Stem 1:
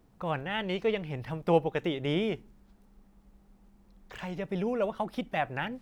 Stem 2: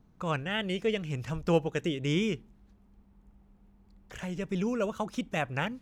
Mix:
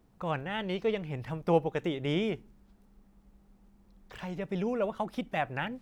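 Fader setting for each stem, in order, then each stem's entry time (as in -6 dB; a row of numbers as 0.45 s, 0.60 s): -2.0 dB, -17.0 dB; 0.00 s, 0.00 s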